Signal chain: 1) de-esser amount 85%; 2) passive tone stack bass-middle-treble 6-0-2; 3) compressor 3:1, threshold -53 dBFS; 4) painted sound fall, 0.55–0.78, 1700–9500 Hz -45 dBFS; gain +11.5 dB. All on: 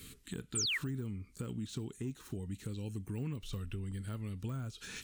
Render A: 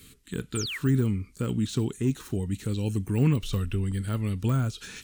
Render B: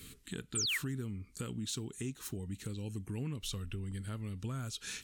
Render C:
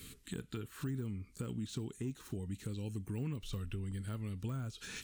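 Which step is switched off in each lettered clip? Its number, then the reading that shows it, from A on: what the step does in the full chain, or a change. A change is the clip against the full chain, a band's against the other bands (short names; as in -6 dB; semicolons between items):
3, mean gain reduction 11.0 dB; 1, 1 kHz band +2.0 dB; 4, 4 kHz band -9.5 dB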